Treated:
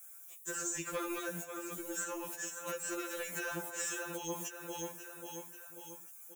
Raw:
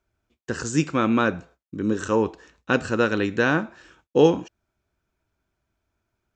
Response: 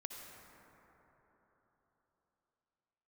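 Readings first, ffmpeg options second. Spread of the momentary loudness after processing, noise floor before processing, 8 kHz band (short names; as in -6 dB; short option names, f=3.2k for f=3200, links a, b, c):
11 LU, -83 dBFS, +1.5 dB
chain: -filter_complex "[0:a]acrossover=split=570|4100[a][b][c];[a]aeval=exprs='val(0)*gte(abs(val(0)),0.00596)':c=same[d];[d][b][c]amix=inputs=3:normalize=0,aexciter=amount=11.9:drive=9.8:freq=7k,acrossover=split=290|860|4200[e][f][g][h];[e]acompressor=threshold=-36dB:ratio=4[i];[f]acompressor=threshold=-30dB:ratio=4[j];[g]acompressor=threshold=-28dB:ratio=4[k];[h]acompressor=threshold=-34dB:ratio=4[l];[i][j][k][l]amix=inputs=4:normalize=0,asplit=2[m][n];[n]aecho=0:1:539|1078|1617|2156:0.0668|0.0361|0.0195|0.0105[o];[m][o]amix=inputs=2:normalize=0,acompressor=threshold=-40dB:ratio=6,alimiter=level_in=8.5dB:limit=-24dB:level=0:latency=1:release=382,volume=-8.5dB,lowshelf=f=120:g=-6,asoftclip=type=tanh:threshold=-39dB,equalizer=f=210:t=o:w=0.98:g=-6,afftfilt=real='re*2.83*eq(mod(b,8),0)':imag='im*2.83*eq(mod(b,8),0)':win_size=2048:overlap=0.75,volume=12.5dB"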